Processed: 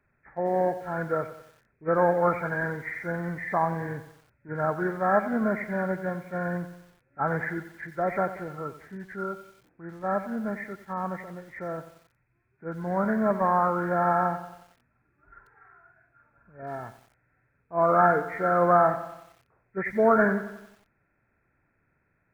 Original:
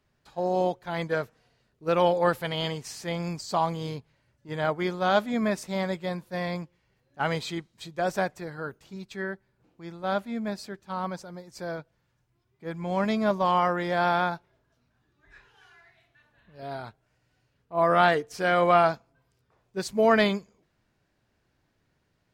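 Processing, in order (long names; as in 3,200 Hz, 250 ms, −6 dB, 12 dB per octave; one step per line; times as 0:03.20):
hearing-aid frequency compression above 1,300 Hz 4 to 1
feedback echo at a low word length 91 ms, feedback 55%, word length 8 bits, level −12.5 dB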